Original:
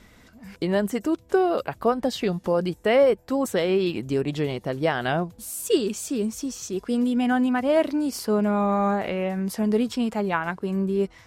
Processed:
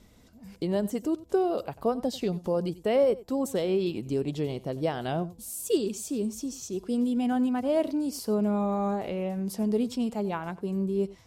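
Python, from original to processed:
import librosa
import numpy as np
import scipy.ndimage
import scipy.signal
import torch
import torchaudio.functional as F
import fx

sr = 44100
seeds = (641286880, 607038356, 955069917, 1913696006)

p1 = fx.peak_eq(x, sr, hz=1700.0, db=-10.5, octaves=1.4)
p2 = p1 + fx.echo_single(p1, sr, ms=92, db=-19.0, dry=0)
y = p2 * librosa.db_to_amplitude(-3.5)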